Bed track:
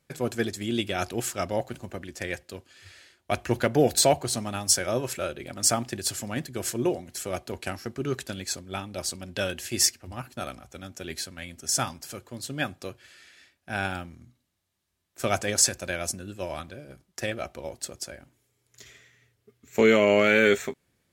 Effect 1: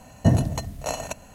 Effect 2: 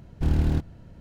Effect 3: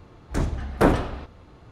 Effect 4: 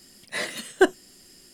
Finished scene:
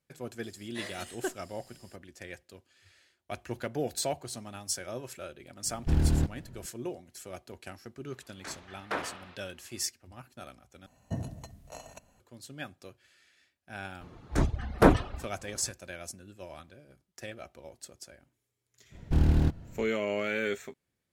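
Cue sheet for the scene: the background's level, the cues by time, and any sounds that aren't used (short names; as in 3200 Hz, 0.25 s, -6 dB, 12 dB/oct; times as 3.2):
bed track -11.5 dB
0.43 add 4 -7.5 dB + compressor 1.5:1, threshold -36 dBFS
5.66 add 2 -2.5 dB
8.1 add 3 -5 dB + band-pass 2600 Hz, Q 0.78
10.86 replace with 1 -17 dB
14.01 add 3 -1 dB + reverb removal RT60 0.58 s
18.9 add 2 -1 dB, fades 0.05 s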